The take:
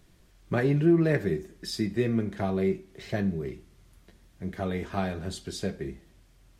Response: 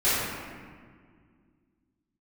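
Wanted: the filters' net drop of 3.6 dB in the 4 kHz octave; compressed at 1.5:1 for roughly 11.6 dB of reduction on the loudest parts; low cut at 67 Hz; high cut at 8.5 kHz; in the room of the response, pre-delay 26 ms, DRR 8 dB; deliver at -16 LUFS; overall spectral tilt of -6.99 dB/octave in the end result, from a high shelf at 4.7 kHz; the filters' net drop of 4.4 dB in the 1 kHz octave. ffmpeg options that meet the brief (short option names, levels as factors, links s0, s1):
-filter_complex "[0:a]highpass=67,lowpass=8500,equalizer=f=1000:t=o:g=-7,equalizer=f=4000:t=o:g=-7.5,highshelf=f=4700:g=5.5,acompressor=threshold=0.00316:ratio=1.5,asplit=2[s0][s1];[1:a]atrim=start_sample=2205,adelay=26[s2];[s1][s2]afir=irnorm=-1:irlink=0,volume=0.0668[s3];[s0][s3]amix=inputs=2:normalize=0,volume=13.3"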